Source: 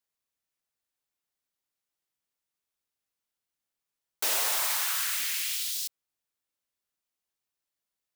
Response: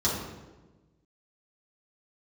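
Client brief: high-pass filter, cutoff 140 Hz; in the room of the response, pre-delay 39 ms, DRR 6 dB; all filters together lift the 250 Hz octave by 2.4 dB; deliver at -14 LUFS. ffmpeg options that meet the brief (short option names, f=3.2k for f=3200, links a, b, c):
-filter_complex "[0:a]highpass=140,equalizer=f=250:t=o:g=4,asplit=2[a][b];[1:a]atrim=start_sample=2205,adelay=39[c];[b][c]afir=irnorm=-1:irlink=0,volume=-17dB[d];[a][d]amix=inputs=2:normalize=0,volume=12.5dB"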